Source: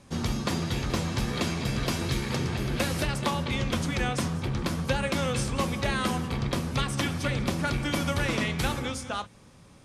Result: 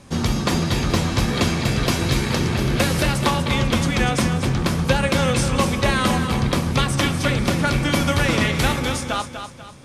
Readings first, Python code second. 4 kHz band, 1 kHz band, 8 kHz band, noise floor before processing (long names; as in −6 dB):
+8.5 dB, +8.5 dB, +8.5 dB, −53 dBFS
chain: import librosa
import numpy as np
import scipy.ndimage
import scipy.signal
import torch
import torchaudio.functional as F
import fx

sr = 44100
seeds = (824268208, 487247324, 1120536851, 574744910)

y = fx.echo_feedback(x, sr, ms=245, feedback_pct=38, wet_db=-8.5)
y = y * 10.0 ** (8.0 / 20.0)